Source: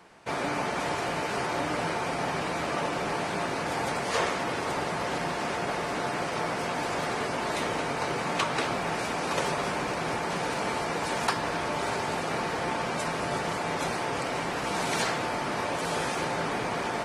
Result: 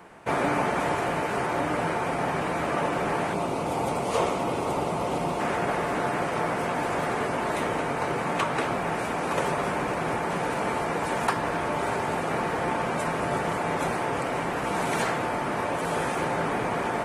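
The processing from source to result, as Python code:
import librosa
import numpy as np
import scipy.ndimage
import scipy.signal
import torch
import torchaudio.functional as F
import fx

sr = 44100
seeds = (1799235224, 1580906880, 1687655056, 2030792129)

y = fx.peak_eq(x, sr, hz=1700.0, db=-13.5, octaves=0.53, at=(3.33, 5.4))
y = fx.rider(y, sr, range_db=10, speed_s=2.0)
y = fx.peak_eq(y, sr, hz=4800.0, db=-10.5, octaves=1.4)
y = F.gain(torch.from_numpy(y), 3.5).numpy()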